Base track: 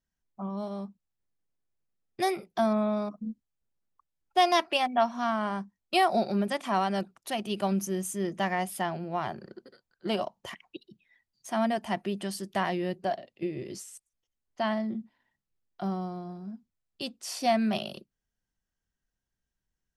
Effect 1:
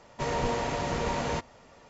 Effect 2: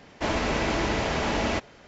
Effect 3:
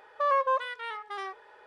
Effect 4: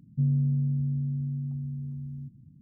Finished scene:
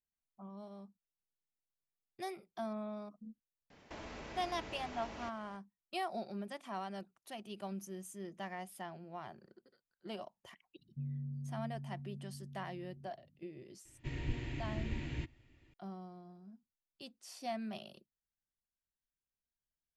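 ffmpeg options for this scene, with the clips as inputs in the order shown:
ffmpeg -i bed.wav -i cue0.wav -i cue1.wav -i cue2.wav -i cue3.wav -filter_complex "[0:a]volume=-15dB[link_01];[2:a]acompressor=threshold=-33dB:ratio=6:attack=3.2:release=140:knee=1:detection=peak[link_02];[1:a]firequalizer=gain_entry='entry(130,0);entry(190,-17);entry(320,0);entry(460,-24);entry(1200,-25);entry(1800,-10);entry(2600,-7);entry(5800,-23);entry(10000,-8)':delay=0.05:min_phase=1[link_03];[link_02]atrim=end=1.87,asetpts=PTS-STARTPTS,volume=-11.5dB,afade=type=in:duration=0.004:curve=hsin,afade=type=out:start_time=1.866:duration=0.004:curve=hsin,adelay=3700[link_04];[4:a]atrim=end=2.61,asetpts=PTS-STARTPTS,volume=-16.5dB,afade=type=in:duration=0.004:curve=hsin,afade=type=out:start_time=2.606:duration=0.004:curve=hsin,adelay=10790[link_05];[link_03]atrim=end=1.89,asetpts=PTS-STARTPTS,volume=-2dB,afade=type=in:duration=0.004:curve=hsin,afade=type=out:start_time=1.886:duration=0.004:curve=hsin,adelay=13850[link_06];[link_01][link_04][link_05][link_06]amix=inputs=4:normalize=0" out.wav

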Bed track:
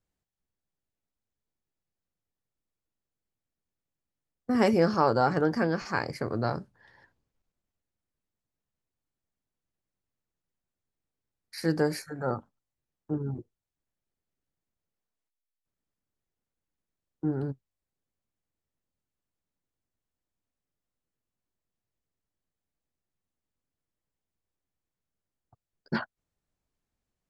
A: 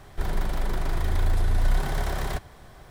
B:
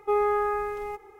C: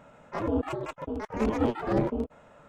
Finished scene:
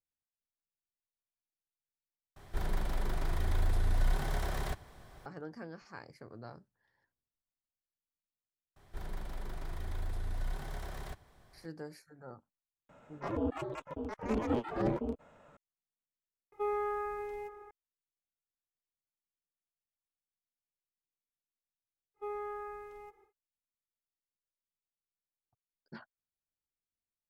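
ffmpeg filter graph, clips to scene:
ffmpeg -i bed.wav -i cue0.wav -i cue1.wav -i cue2.wav -filter_complex "[1:a]asplit=2[link_01][link_02];[2:a]asplit=2[link_03][link_04];[0:a]volume=-19dB[link_05];[link_03]asplit=2[link_06][link_07];[link_07]adelay=583.1,volume=-15dB,highshelf=frequency=4000:gain=-13.1[link_08];[link_06][link_08]amix=inputs=2:normalize=0[link_09];[link_05]asplit=3[link_10][link_11][link_12];[link_10]atrim=end=2.364[link_13];[link_01]atrim=end=2.9,asetpts=PTS-STARTPTS,volume=-7dB[link_14];[link_11]atrim=start=5.256:end=16.524[link_15];[link_09]atrim=end=1.19,asetpts=PTS-STARTPTS,volume=-10dB[link_16];[link_12]atrim=start=17.706[link_17];[link_02]atrim=end=2.9,asetpts=PTS-STARTPTS,volume=-14.5dB,afade=type=in:duration=0.004:curve=hsin,afade=type=out:start_time=2.896:duration=0.004:curve=hsin,adelay=8760[link_18];[3:a]atrim=end=2.68,asetpts=PTS-STARTPTS,volume=-6dB,afade=type=in:duration=0.004:curve=hsin,afade=type=out:start_time=2.676:duration=0.004:curve=hsin,adelay=12890[link_19];[link_04]atrim=end=1.19,asetpts=PTS-STARTPTS,volume=-16dB,afade=type=in:duration=0.1,afade=type=out:start_time=1.09:duration=0.1,adelay=22140[link_20];[link_13][link_14]acrossfade=duration=0.004:curve1=hsin:curve2=hsin[link_21];[link_21][link_15]acrossfade=duration=0.004:curve1=hsin:curve2=hsin[link_22];[link_22][link_16]acrossfade=duration=0.004:curve1=hsin:curve2=hsin[link_23];[link_23][link_17]acrossfade=duration=0.004:curve1=hsin:curve2=hsin[link_24];[link_24][link_18][link_19][link_20]amix=inputs=4:normalize=0" out.wav

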